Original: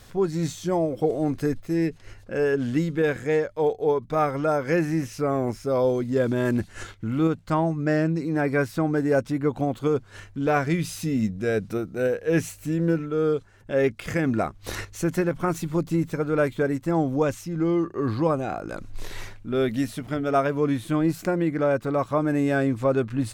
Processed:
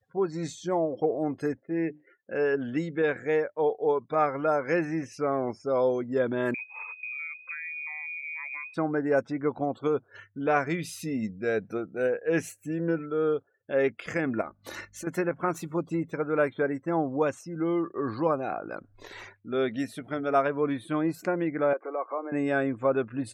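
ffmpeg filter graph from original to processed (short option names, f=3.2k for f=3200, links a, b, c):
-filter_complex "[0:a]asettb=1/sr,asplit=3[a][b][c];[a]atrim=end=1.564[d];[b]atrim=start=1.56:end=2.33,asetpts=PTS-STARTPTS,afade=t=in:d=0.004:c=qsin,afade=t=out:st=0.766:d=0.004:c=qsin,highpass=110,lowpass=3.1k,bandreject=f=50:t=h:w=6,bandreject=f=100:t=h:w=6,bandreject=f=150:t=h:w=6,bandreject=f=200:t=h:w=6,bandreject=f=250:t=h:w=6,bandreject=f=300:t=h:w=6,bandreject=f=350:t=h:w=6[e];[c]atrim=start=2.326[f];[d][e]acrossfade=d=0.004:c1=hsin:c2=qsin[g];[g][f]acrossfade=d=0.004:c1=qsin:c2=hsin,asettb=1/sr,asplit=3[h][i][j];[h]atrim=end=6.544[k];[i]atrim=start=6.54:end=8.74,asetpts=PTS-STARTPTS,afade=t=in:d=0.004:c=qsin,afade=t=out:st=2.196:d=0.004:c=qsin,equalizer=f=86:t=o:w=1.4:g=13,acompressor=threshold=-32dB:ratio=10:attack=3.2:release=140:knee=1:detection=peak,lowpass=f=2.2k:t=q:w=0.5098,lowpass=f=2.2k:t=q:w=0.6013,lowpass=f=2.2k:t=q:w=0.9,lowpass=f=2.2k:t=q:w=2.563,afreqshift=-2600[l];[j]atrim=start=8.736[m];[k][l]acrossfade=d=0.004:c1=hsin:c2=qsin[n];[n][m]acrossfade=d=0.004:c1=qsin:c2=hsin,asettb=1/sr,asplit=3[o][p][q];[o]atrim=end=14.414[r];[p]atrim=start=14.41:end=15.07,asetpts=PTS-STARTPTS,afade=t=in:d=0.004:c=qsin,afade=t=out:st=0.656:d=0.004:c=qsin,aecho=1:1:3.4:0.48,atrim=end_sample=29106,acompressor=threshold=-32dB:ratio=3:attack=3.2:release=140:knee=1:detection=peak,aeval=exprs='val(0)+0.00501*(sin(2*PI*50*n/s)+sin(2*PI*2*50*n/s)/2+sin(2*PI*3*50*n/s)/3+sin(2*PI*4*50*n/s)/4+sin(2*PI*5*50*n/s)/5)':c=same[s];[q]atrim=start=15.066[t];[r][s]acrossfade=d=0.004:c1=hsin:c2=qsin[u];[u][t]acrossfade=d=0.004:c1=qsin:c2=hsin,asettb=1/sr,asplit=3[v][w][x];[v]atrim=end=21.734[y];[w]atrim=start=21.73:end=22.32,asetpts=PTS-STARTPTS,afade=t=in:d=0.004:c=qsin,afade=t=out:st=0.586:d=0.004:c=qsin,acompressor=threshold=-32dB:ratio=4:attack=3.2:release=140:knee=1:detection=peak,highpass=f=320:w=0.5412,highpass=f=320:w=1.3066,equalizer=f=350:t=q:w=4:g=7,equalizer=f=500:t=q:w=4:g=8,equalizer=f=740:t=q:w=4:g=7,equalizer=f=1.1k:t=q:w=4:g=6,equalizer=f=2.2k:t=q:w=4:g=10,lowpass=f=2.3k:w=0.5412,lowpass=f=2.3k:w=1.3066[z];[x]atrim=start=22.316[aa];[y][z]acrossfade=d=0.004:c1=hsin:c2=qsin[ab];[ab][aa]acrossfade=d=0.004:c1=qsin:c2=hsin,highpass=f=430:p=1,afftdn=nr=36:nf=-46,equalizer=f=6.1k:w=0.49:g=-4"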